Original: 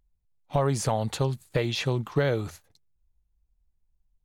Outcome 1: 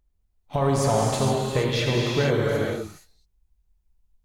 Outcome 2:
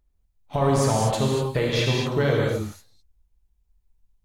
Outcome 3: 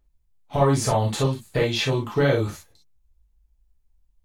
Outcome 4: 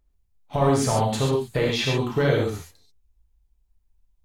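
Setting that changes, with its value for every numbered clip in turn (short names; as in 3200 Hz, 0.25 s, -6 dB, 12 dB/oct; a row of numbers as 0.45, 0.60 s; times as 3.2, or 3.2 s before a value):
non-linear reverb, gate: 500, 270, 80, 160 ms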